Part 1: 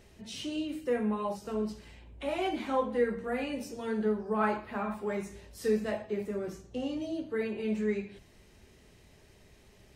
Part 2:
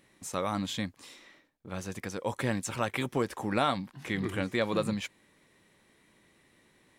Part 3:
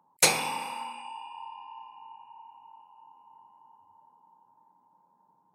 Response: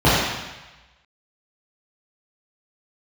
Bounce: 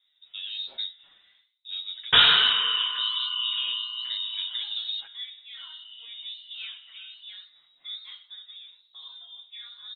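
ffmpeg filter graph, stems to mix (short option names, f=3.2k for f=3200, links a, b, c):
-filter_complex "[0:a]adelay=2200,volume=-12.5dB[a];[1:a]tiltshelf=f=1.2k:g=9.5,bandreject=f=77.98:t=h:w=4,bandreject=f=155.96:t=h:w=4,bandreject=f=233.94:t=h:w=4,bandreject=f=311.92:t=h:w=4,bandreject=f=389.9:t=h:w=4,bandreject=f=467.88:t=h:w=4,bandreject=f=545.86:t=h:w=4,bandreject=f=623.84:t=h:w=4,bandreject=f=701.82:t=h:w=4,bandreject=f=779.8:t=h:w=4,bandreject=f=857.78:t=h:w=4,bandreject=f=935.76:t=h:w=4,bandreject=f=1.01374k:t=h:w=4,bandreject=f=1.09172k:t=h:w=4,bandreject=f=1.1697k:t=h:w=4,bandreject=f=1.24768k:t=h:w=4,bandreject=f=1.32566k:t=h:w=4,bandreject=f=1.40364k:t=h:w=4,bandreject=f=1.48162k:t=h:w=4,bandreject=f=1.5596k:t=h:w=4,bandreject=f=1.63758k:t=h:w=4,bandreject=f=1.71556k:t=h:w=4,bandreject=f=1.79354k:t=h:w=4,bandreject=f=1.87152k:t=h:w=4,bandreject=f=1.9495k:t=h:w=4,bandreject=f=2.02748k:t=h:w=4,bandreject=f=2.10546k:t=h:w=4,bandreject=f=2.18344k:t=h:w=4,bandreject=f=2.26142k:t=h:w=4,bandreject=f=2.3394k:t=h:w=4,bandreject=f=2.41738k:t=h:w=4,bandreject=f=2.49536k:t=h:w=4,bandreject=f=2.57334k:t=h:w=4,bandreject=f=2.65132k:t=h:w=4,bandreject=f=2.7293k:t=h:w=4,bandreject=f=2.80728k:t=h:w=4,bandreject=f=2.88526k:t=h:w=4,bandreject=f=2.96324k:t=h:w=4,bandreject=f=3.04122k:t=h:w=4,asplit=2[b][c];[c]adelay=7.1,afreqshift=-1.2[d];[b][d]amix=inputs=2:normalize=1,volume=-3.5dB[e];[2:a]adelay=1900,volume=1.5dB,asplit=3[f][g][h];[f]atrim=end=4.64,asetpts=PTS-STARTPTS,afade=t=out:st=4.636:d=0.004:c=hsin[i];[g]atrim=start=4.64:end=5.56,asetpts=PTS-STARTPTS,volume=0[j];[h]atrim=start=5.56,asetpts=PTS-STARTPTS,afade=t=in:d=0.004:c=hsin[k];[i][j][k]concat=n=3:v=0:a=1,asplit=2[l][m];[m]volume=-19dB[n];[a][e]amix=inputs=2:normalize=0,acompressor=threshold=-31dB:ratio=6,volume=0dB[o];[3:a]atrim=start_sample=2205[p];[n][p]afir=irnorm=-1:irlink=0[q];[l][o][q]amix=inputs=3:normalize=0,lowpass=f=3.3k:t=q:w=0.5098,lowpass=f=3.3k:t=q:w=0.6013,lowpass=f=3.3k:t=q:w=0.9,lowpass=f=3.3k:t=q:w=2.563,afreqshift=-3900,flanger=delay=3.2:depth=6.9:regen=73:speed=1.2:shape=triangular,dynaudnorm=f=310:g=3:m=6dB"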